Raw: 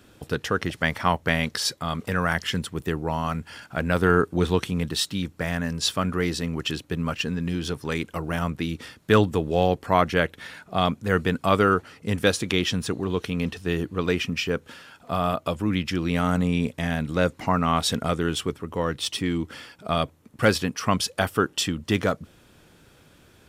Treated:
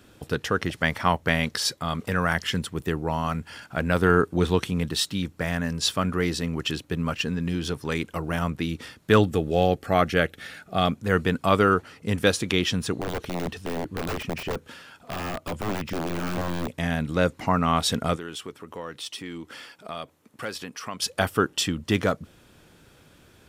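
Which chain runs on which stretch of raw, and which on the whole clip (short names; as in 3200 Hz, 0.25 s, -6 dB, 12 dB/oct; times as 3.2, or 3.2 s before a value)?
9.19–10.94 Butterworth band-stop 980 Hz, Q 4.5 + high shelf 12000 Hz +4.5 dB
12.94–16.7 wrapped overs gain 19.5 dB + de-esser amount 100%
18.16–21.02 HPF 360 Hz 6 dB/oct + compressor 2:1, threshold -37 dBFS
whole clip: dry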